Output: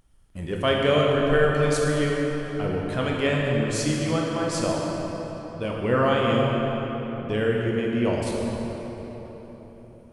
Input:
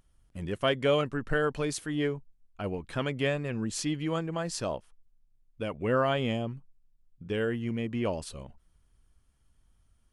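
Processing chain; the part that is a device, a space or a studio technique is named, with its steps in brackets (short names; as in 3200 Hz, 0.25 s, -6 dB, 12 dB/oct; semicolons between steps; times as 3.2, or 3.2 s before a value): cathedral (reverb RT60 4.3 s, pre-delay 18 ms, DRR -2.5 dB); gain +3 dB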